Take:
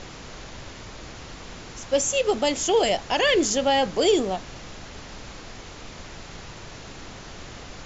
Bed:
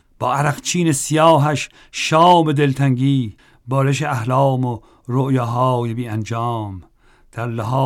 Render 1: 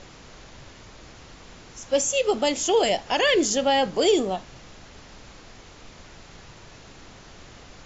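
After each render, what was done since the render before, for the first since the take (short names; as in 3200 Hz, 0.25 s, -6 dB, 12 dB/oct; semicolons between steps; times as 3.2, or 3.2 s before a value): noise print and reduce 6 dB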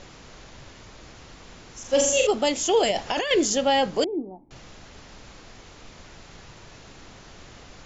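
1.8–2.27 flutter echo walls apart 7.3 m, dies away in 0.72 s; 2.91–3.31 negative-ratio compressor -26 dBFS; 4.04–4.51 vocal tract filter u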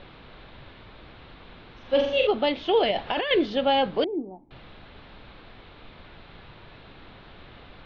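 elliptic low-pass 3900 Hz, stop band 50 dB; notch 1900 Hz, Q 28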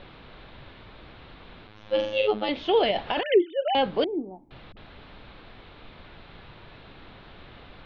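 1.67–2.49 robotiser 106 Hz; 3.23–3.75 sine-wave speech; 4.72–5.13 dispersion highs, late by 47 ms, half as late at 310 Hz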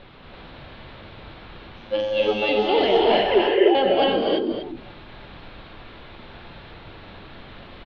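on a send: echo 0.241 s -9 dB; on the sum: non-linear reverb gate 0.36 s rising, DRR -3.5 dB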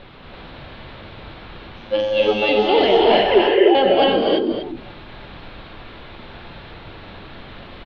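gain +4 dB; limiter -3 dBFS, peak gain reduction 1.5 dB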